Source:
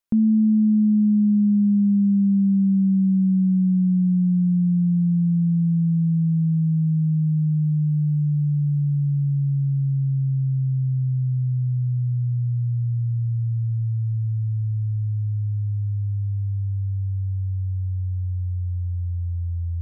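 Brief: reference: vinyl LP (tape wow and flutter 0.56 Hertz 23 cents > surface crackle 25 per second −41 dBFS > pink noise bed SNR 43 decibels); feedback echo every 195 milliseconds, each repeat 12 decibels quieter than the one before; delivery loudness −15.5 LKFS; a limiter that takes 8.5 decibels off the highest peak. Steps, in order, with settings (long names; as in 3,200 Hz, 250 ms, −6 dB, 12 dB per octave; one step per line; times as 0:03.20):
brickwall limiter −22 dBFS
repeating echo 195 ms, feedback 25%, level −12 dB
tape wow and flutter 0.56 Hz 23 cents
surface crackle 25 per second −41 dBFS
pink noise bed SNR 43 dB
level +10.5 dB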